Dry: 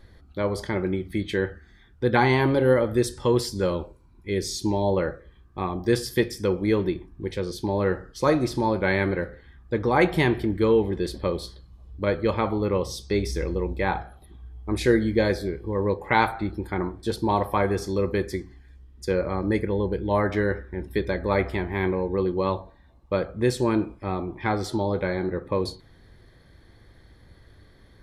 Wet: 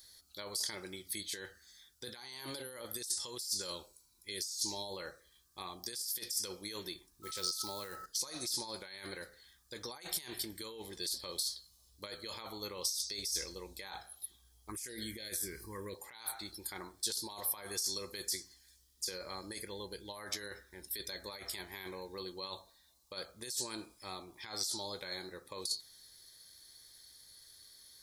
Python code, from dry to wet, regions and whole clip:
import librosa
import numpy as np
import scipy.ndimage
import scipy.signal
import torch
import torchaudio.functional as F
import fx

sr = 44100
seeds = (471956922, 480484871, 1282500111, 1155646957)

y = fx.quant_float(x, sr, bits=6, at=(7.22, 8.04), fade=0.02)
y = fx.dmg_tone(y, sr, hz=1300.0, level_db=-36.0, at=(7.22, 8.04), fade=0.02)
y = fx.sustainer(y, sr, db_per_s=32.0, at=(7.22, 8.04), fade=0.02)
y = fx.chain(y, sr, fx.env_phaser(low_hz=480.0, high_hz=1200.0, full_db=-15.0),
    fx.env_flatten(amount_pct=50), at=(14.69, 15.95))
y = F.preemphasis(torch.from_numpy(y), 0.97).numpy()
y = fx.over_compress(y, sr, threshold_db=-46.0, ratio=-1.0)
y = fx.high_shelf_res(y, sr, hz=3500.0, db=10.5, q=1.5)